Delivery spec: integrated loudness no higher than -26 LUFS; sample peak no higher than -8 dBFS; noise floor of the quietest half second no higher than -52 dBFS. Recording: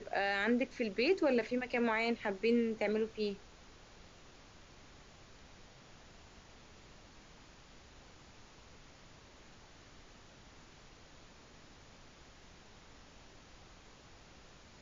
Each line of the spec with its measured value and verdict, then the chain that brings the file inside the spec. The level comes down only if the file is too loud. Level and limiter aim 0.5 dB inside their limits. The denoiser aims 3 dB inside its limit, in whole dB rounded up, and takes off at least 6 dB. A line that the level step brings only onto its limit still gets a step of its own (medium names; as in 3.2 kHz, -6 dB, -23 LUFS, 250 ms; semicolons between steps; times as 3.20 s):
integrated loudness -33.5 LUFS: pass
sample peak -20.0 dBFS: pass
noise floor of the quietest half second -58 dBFS: pass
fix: none needed